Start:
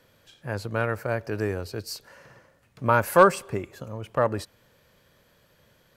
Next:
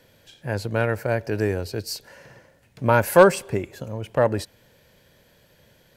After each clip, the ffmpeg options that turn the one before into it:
ffmpeg -i in.wav -af "equalizer=frequency=1200:width_type=o:width=0.33:gain=-10.5,volume=4.5dB" out.wav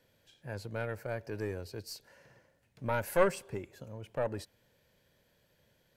ffmpeg -i in.wav -af "aeval=exprs='(tanh(1.78*val(0)+0.8)-tanh(0.8))/1.78':channel_layout=same,volume=-8dB" out.wav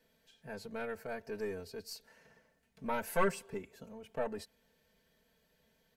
ffmpeg -i in.wav -af "aecho=1:1:4.5:0.9,volume=-4.5dB" out.wav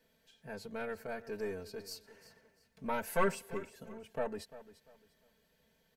ffmpeg -i in.wav -af "aecho=1:1:346|692|1038:0.158|0.0444|0.0124" out.wav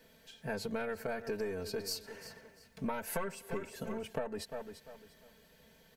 ffmpeg -i in.wav -af "acompressor=threshold=-43dB:ratio=20,volume=10dB" out.wav

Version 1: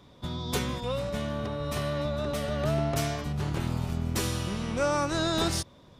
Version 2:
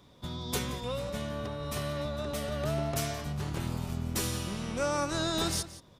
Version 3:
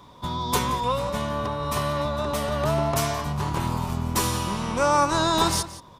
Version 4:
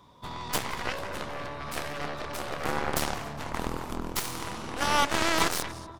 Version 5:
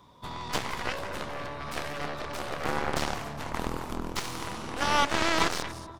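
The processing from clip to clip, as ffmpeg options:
ffmpeg -i in.wav -filter_complex "[0:a]highshelf=frequency=6000:gain=7,asplit=2[link_01][link_02];[link_02]adelay=174.9,volume=-14dB,highshelf=frequency=4000:gain=-3.94[link_03];[link_01][link_03]amix=inputs=2:normalize=0,volume=-4dB" out.wav
ffmpeg -i in.wav -af "equalizer=frequency=990:width=3.1:gain=13.5,volume=6.5dB" out.wav
ffmpeg -i in.wav -filter_complex "[0:a]asplit=2[link_01][link_02];[link_02]adelay=239,lowpass=frequency=1800:poles=1,volume=-6.5dB,asplit=2[link_03][link_04];[link_04]adelay=239,lowpass=frequency=1800:poles=1,volume=0.36,asplit=2[link_05][link_06];[link_06]adelay=239,lowpass=frequency=1800:poles=1,volume=0.36,asplit=2[link_07][link_08];[link_08]adelay=239,lowpass=frequency=1800:poles=1,volume=0.36[link_09];[link_01][link_03][link_05][link_07][link_09]amix=inputs=5:normalize=0,aeval=exprs='0.447*(cos(1*acos(clip(val(0)/0.447,-1,1)))-cos(1*PI/2))+0.0631*(cos(6*acos(clip(val(0)/0.447,-1,1)))-cos(6*PI/2))+0.112*(cos(7*acos(clip(val(0)/0.447,-1,1)))-cos(7*PI/2))':channel_layout=same,volume=-5dB" out.wav
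ffmpeg -i in.wav -filter_complex "[0:a]acrossover=split=7000[link_01][link_02];[link_02]acompressor=threshold=-45dB:ratio=4:attack=1:release=60[link_03];[link_01][link_03]amix=inputs=2:normalize=0" out.wav

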